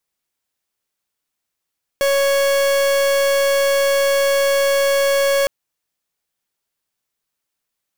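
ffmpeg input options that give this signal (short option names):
-f lavfi -i "aevalsrc='0.158*(2*lt(mod(555*t,1),0.43)-1)':d=3.46:s=44100"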